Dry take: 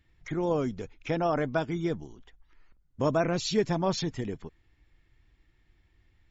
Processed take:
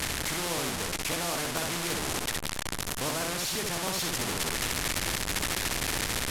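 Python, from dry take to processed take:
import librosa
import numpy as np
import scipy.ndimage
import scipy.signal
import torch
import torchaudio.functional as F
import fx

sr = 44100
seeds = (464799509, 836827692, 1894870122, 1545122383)

p1 = fx.delta_mod(x, sr, bps=64000, step_db=-26.5)
p2 = p1 + fx.room_early_taps(p1, sr, ms=(16, 64), db=(-14.5, -4.5), dry=0)
p3 = fx.rider(p2, sr, range_db=4, speed_s=0.5)
p4 = fx.buffer_crackle(p3, sr, first_s=0.45, period_s=0.11, block=512, kind='repeat')
y = fx.spectral_comp(p4, sr, ratio=2.0)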